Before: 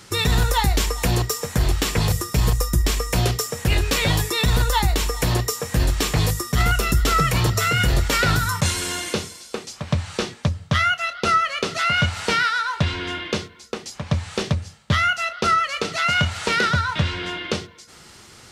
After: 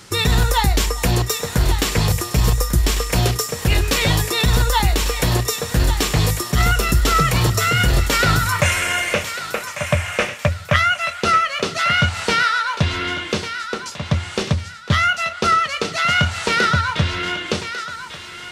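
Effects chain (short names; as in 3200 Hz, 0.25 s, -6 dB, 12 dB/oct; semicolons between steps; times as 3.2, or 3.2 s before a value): 8.52–10.76 EQ curve 100 Hz 0 dB, 390 Hz -7 dB, 590 Hz +10 dB, 840 Hz +1 dB, 2400 Hz +11 dB, 4200 Hz -10 dB, 6100 Hz -2 dB; thinning echo 1.146 s, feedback 33%, high-pass 900 Hz, level -9 dB; gain +2.5 dB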